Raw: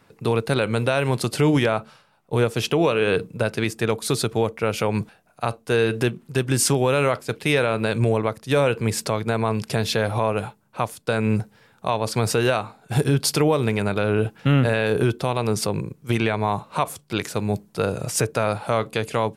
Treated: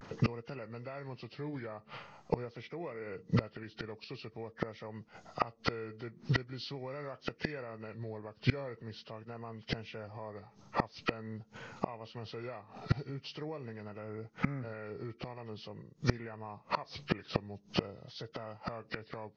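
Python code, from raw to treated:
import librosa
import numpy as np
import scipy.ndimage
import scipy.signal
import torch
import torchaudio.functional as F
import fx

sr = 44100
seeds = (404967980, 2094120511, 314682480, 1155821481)

y = fx.freq_compress(x, sr, knee_hz=1100.0, ratio=1.5)
y = fx.gate_flip(y, sr, shuts_db=-22.0, range_db=-30)
y = fx.vibrato(y, sr, rate_hz=0.45, depth_cents=48.0)
y = y * 10.0 ** (7.5 / 20.0)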